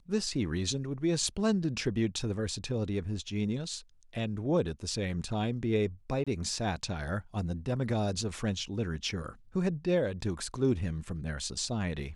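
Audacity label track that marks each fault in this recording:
6.240000	6.270000	drop-out 26 ms

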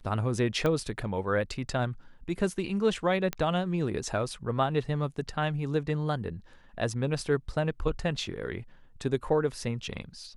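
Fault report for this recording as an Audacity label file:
0.660000	0.660000	click −15 dBFS
3.330000	3.330000	click −15 dBFS

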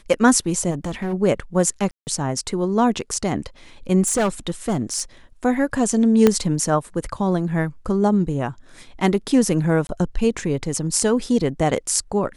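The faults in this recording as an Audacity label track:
0.700000	1.140000	clipping −21.5 dBFS
1.910000	2.070000	drop-out 159 ms
4.060000	5.010000	clipping −15.5 dBFS
6.270000	6.270000	click −2 dBFS
9.870000	9.890000	drop-out 21 ms

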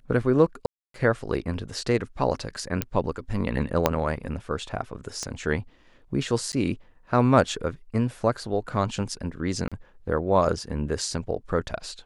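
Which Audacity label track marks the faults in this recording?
0.660000	0.940000	drop-out 283 ms
2.820000	2.820000	click −8 dBFS
3.860000	3.860000	click −5 dBFS
5.230000	5.230000	click −18 dBFS
6.520000	6.530000	drop-out 9.4 ms
9.680000	9.720000	drop-out 36 ms

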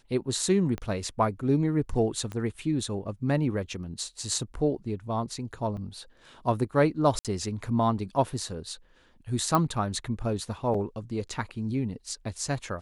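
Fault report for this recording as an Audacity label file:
0.780000	0.780000	click −21 dBFS
2.320000	2.320000	click −23 dBFS
5.770000	5.780000	drop-out 5 ms
7.190000	7.250000	drop-out 57 ms
9.550000	9.550000	click −11 dBFS
10.740000	10.740000	drop-out 4.7 ms

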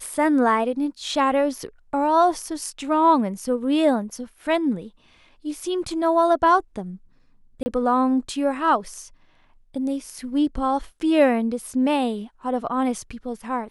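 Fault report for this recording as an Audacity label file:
7.630000	7.660000	drop-out 30 ms

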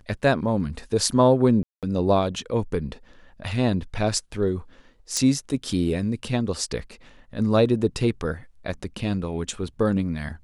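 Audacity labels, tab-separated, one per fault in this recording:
1.630000	1.830000	drop-out 197 ms
5.170000	5.170000	click −11 dBFS

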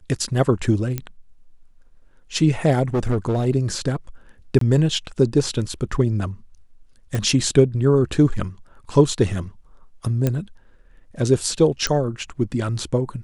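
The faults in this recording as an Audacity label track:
0.980000	0.980000	click −11 dBFS
2.940000	3.470000	clipping −16.5 dBFS
4.590000	4.610000	drop-out 23 ms
7.150000	7.150000	click
10.270000	10.270000	click −8 dBFS
11.870000	11.870000	click −8 dBFS

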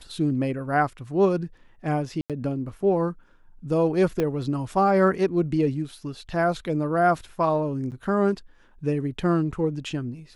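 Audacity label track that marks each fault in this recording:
2.210000	2.300000	drop-out 87 ms
4.200000	4.200000	click −13 dBFS
7.910000	7.920000	drop-out 8.8 ms

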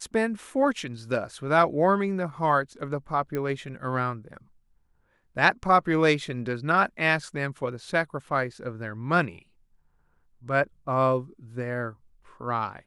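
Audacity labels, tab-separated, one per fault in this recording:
3.350000	3.350000	click −18 dBFS

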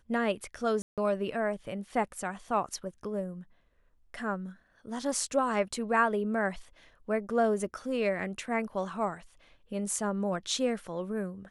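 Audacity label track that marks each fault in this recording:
0.820000	0.980000	drop-out 157 ms

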